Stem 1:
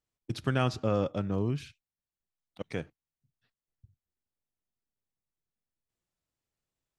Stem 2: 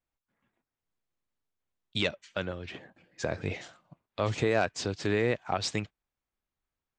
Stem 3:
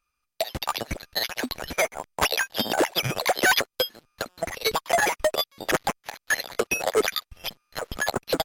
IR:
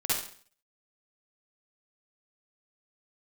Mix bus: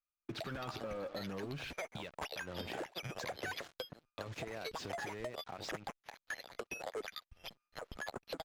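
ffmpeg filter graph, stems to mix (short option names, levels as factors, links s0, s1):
-filter_complex "[0:a]asplit=2[s0][s1];[s1]highpass=f=720:p=1,volume=22.4,asoftclip=type=tanh:threshold=0.224[s2];[s0][s2]amix=inputs=2:normalize=0,lowpass=f=1800:p=1,volume=0.501,volume=0.708[s3];[1:a]acompressor=threshold=0.0158:ratio=16,highpass=42,volume=1.33,asplit=2[s4][s5];[2:a]agate=range=0.355:threshold=0.002:ratio=16:detection=peak,volume=0.211[s6];[s5]apad=whole_len=308204[s7];[s3][s7]sidechaincompress=threshold=0.00141:ratio=8:attack=16:release=141[s8];[s8][s4]amix=inputs=2:normalize=0,acrusher=bits=6:mix=0:aa=0.5,alimiter=level_in=2.11:limit=0.0631:level=0:latency=1:release=228,volume=0.473,volume=1[s9];[s6][s9]amix=inputs=2:normalize=0,lowpass=f=4000:p=1,acompressor=threshold=0.0112:ratio=6"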